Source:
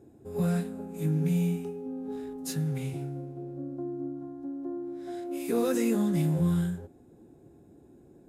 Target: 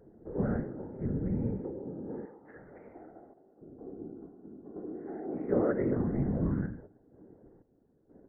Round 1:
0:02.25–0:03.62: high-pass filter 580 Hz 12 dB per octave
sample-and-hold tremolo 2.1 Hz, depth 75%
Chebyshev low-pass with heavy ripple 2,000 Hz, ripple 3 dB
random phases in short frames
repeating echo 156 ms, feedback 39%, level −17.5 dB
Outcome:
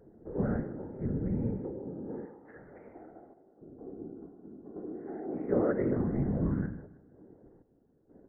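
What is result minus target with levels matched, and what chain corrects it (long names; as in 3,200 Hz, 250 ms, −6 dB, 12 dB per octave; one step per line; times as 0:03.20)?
echo-to-direct +12 dB
0:02.25–0:03.62: high-pass filter 580 Hz 12 dB per octave
sample-and-hold tremolo 2.1 Hz, depth 75%
Chebyshev low-pass with heavy ripple 2,000 Hz, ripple 3 dB
random phases in short frames
repeating echo 156 ms, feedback 39%, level −29.5 dB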